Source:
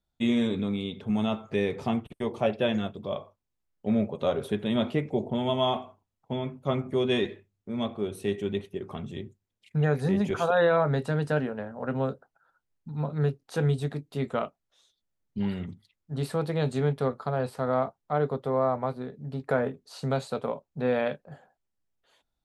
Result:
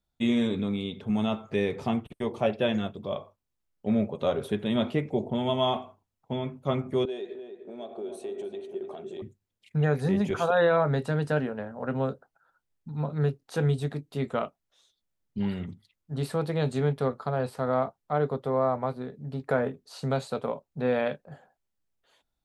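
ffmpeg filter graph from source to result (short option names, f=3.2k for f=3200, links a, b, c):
-filter_complex "[0:a]asettb=1/sr,asplit=3[a][b][c];[a]atrim=end=7.054[d];[b]atrim=start=7.05:end=9.22,asetpts=PTS-STARTPTS,afade=t=in:d=0.004:c=qsin,afade=t=out:st=2.166:d=0.004:c=qsin,acompressor=threshold=-34dB:ratio=10:attack=3.2:release=140:knee=1:detection=peak,highpass=370,equalizer=f=380:t=q:w=4:g=9,equalizer=f=660:t=q:w=4:g=8,equalizer=f=1.1k:t=q:w=4:g=-7,equalizer=f=2k:t=q:w=4:g=-8,equalizer=f=2.9k:t=q:w=4:g=-5,equalizer=f=5.4k:t=q:w=4:g=-6,lowpass=f=9.4k:w=0.5412,lowpass=f=9.4k:w=1.3066,asplit=2[e][f];[f]adelay=300,lowpass=f=1.6k:p=1,volume=-7dB,asplit=2[g][h];[h]adelay=300,lowpass=f=1.6k:p=1,volume=0.5,asplit=2[i][j];[j]adelay=300,lowpass=f=1.6k:p=1,volume=0.5,asplit=2[k][l];[l]adelay=300,lowpass=f=1.6k:p=1,volume=0.5,asplit=2[m][n];[n]adelay=300,lowpass=f=1.6k:p=1,volume=0.5,asplit=2[o][p];[p]adelay=300,lowpass=f=1.6k:p=1,volume=0.5[q];[e][g][i][k][m][o][q]amix=inputs=7:normalize=0,atrim=end_sample=95697[r];[c]atrim=start=9.216[s];[d][r]acrossfade=d=0.004:c1=hsin:c2=qsin[t];[t][s]acrossfade=d=0.004:c1=qsin:c2=hsin"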